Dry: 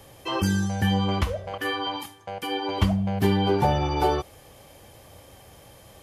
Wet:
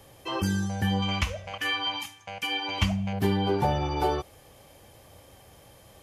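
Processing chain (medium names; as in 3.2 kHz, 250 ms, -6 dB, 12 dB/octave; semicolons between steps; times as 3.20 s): 1.02–3.13 s: fifteen-band graphic EQ 400 Hz -11 dB, 2.5 kHz +11 dB, 6.3 kHz +9 dB; trim -3.5 dB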